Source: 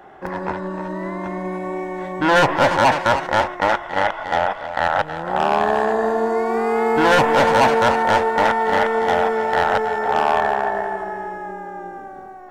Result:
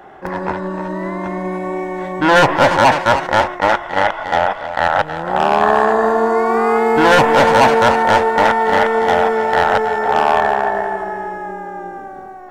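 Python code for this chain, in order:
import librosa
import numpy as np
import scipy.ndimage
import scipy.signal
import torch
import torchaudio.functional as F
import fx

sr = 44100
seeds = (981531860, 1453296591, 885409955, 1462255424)

y = fx.peak_eq(x, sr, hz=1200.0, db=6.5, octaves=0.67, at=(5.62, 6.78))
y = fx.attack_slew(y, sr, db_per_s=340.0)
y = y * 10.0 ** (4.0 / 20.0)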